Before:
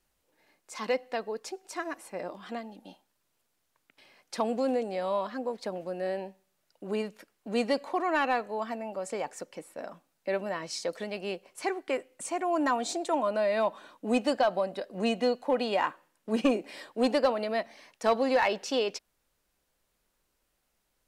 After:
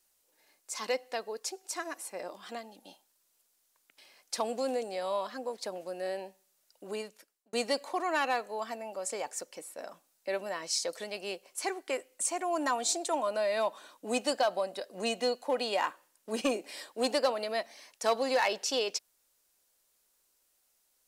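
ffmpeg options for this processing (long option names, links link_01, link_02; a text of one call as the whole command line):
ffmpeg -i in.wav -filter_complex "[0:a]asplit=2[link_01][link_02];[link_01]atrim=end=7.53,asetpts=PTS-STARTPTS,afade=type=out:start_time=6.84:duration=0.69[link_03];[link_02]atrim=start=7.53,asetpts=PTS-STARTPTS,afade=type=in:duration=0.004:curve=hsin[link_04];[link_03][link_04]concat=n=2:v=0:a=1,bass=frequency=250:gain=-11,treble=frequency=4000:gain=11,volume=-2.5dB" out.wav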